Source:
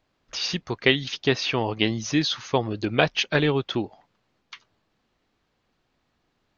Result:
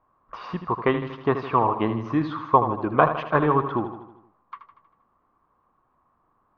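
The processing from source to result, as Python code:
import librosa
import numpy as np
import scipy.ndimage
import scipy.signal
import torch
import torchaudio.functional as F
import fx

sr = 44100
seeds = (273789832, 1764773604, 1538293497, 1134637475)

p1 = fx.lowpass_res(x, sr, hz=1100.0, q=8.3)
p2 = p1 + fx.echo_feedback(p1, sr, ms=79, feedback_pct=55, wet_db=-10, dry=0)
y = p2 * librosa.db_to_amplitude(-1.0)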